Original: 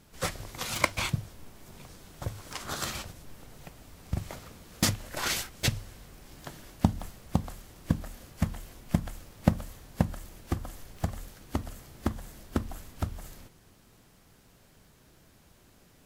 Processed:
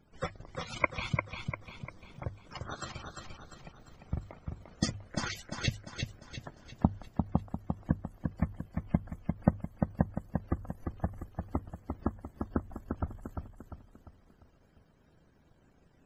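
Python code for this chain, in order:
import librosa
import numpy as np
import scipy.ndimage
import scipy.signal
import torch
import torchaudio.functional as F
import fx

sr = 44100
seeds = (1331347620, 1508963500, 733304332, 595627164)

p1 = fx.spec_topn(x, sr, count=64)
p2 = fx.transient(p1, sr, attack_db=3, sustain_db=-10)
p3 = fx.hum_notches(p2, sr, base_hz=50, count=2)
p4 = p3 + fx.echo_feedback(p3, sr, ms=348, feedback_pct=44, wet_db=-5.0, dry=0)
y = F.gain(torch.from_numpy(p4), -5.0).numpy()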